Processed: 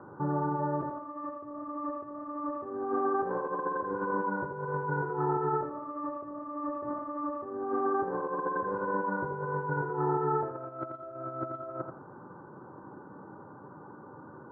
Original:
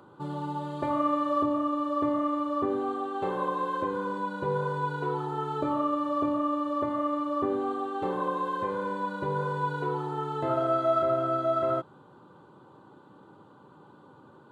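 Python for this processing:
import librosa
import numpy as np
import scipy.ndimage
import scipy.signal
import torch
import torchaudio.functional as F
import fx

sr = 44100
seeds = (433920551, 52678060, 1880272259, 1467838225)

y = scipy.signal.sosfilt(scipy.signal.butter(16, 1800.0, 'lowpass', fs=sr, output='sos'), x)
y = fx.over_compress(y, sr, threshold_db=-33.0, ratio=-0.5)
y = fx.echo_feedback(y, sr, ms=84, feedback_pct=22, wet_db=-7)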